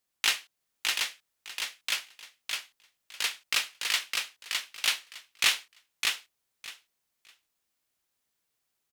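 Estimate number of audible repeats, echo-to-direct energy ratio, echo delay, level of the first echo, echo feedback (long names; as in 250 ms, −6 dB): 3, −3.5 dB, 609 ms, −3.5 dB, 18%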